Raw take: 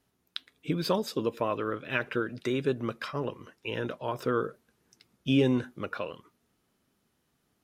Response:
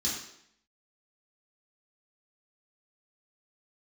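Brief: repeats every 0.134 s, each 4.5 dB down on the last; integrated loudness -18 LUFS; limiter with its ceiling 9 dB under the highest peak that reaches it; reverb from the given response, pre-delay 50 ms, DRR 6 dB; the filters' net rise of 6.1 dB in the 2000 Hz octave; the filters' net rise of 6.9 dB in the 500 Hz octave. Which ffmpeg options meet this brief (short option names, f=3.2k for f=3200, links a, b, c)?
-filter_complex "[0:a]equalizer=f=500:t=o:g=8,equalizer=f=2k:t=o:g=8,alimiter=limit=-16.5dB:level=0:latency=1,aecho=1:1:134|268|402|536|670|804|938|1072|1206:0.596|0.357|0.214|0.129|0.0772|0.0463|0.0278|0.0167|0.01,asplit=2[a][b];[1:a]atrim=start_sample=2205,adelay=50[c];[b][c]afir=irnorm=-1:irlink=0,volume=-11.5dB[d];[a][d]amix=inputs=2:normalize=0,volume=8.5dB"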